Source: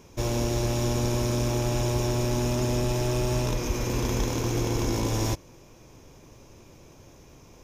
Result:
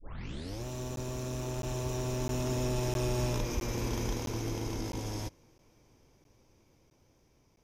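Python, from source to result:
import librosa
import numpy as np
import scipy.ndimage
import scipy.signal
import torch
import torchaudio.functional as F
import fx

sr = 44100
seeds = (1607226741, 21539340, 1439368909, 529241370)

y = fx.tape_start_head(x, sr, length_s=0.68)
y = fx.doppler_pass(y, sr, speed_mps=19, closest_m=22.0, pass_at_s=3.17)
y = fx.buffer_crackle(y, sr, first_s=0.96, period_s=0.66, block=512, kind='zero')
y = y * librosa.db_to_amplitude(-5.0)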